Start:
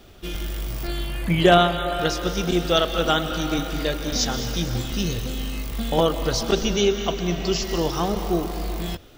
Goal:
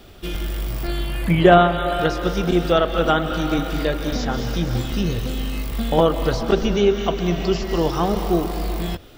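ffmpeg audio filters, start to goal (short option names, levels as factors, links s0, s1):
-filter_complex "[0:a]equalizer=f=6300:w=5.5:g=-4.5,acrossover=split=2300[s0][s1];[s1]acompressor=threshold=0.0112:ratio=6[s2];[s0][s2]amix=inputs=2:normalize=0,volume=1.5"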